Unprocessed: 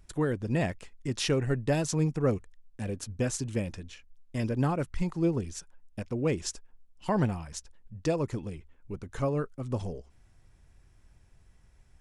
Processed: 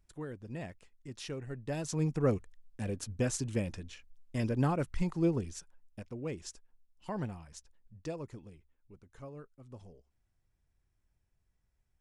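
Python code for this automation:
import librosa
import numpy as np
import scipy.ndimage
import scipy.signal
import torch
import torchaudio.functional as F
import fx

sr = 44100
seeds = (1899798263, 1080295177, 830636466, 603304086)

y = fx.gain(x, sr, db=fx.line((1.51, -13.5), (2.15, -2.0), (5.29, -2.0), (6.2, -10.5), (7.98, -10.5), (8.99, -18.0)))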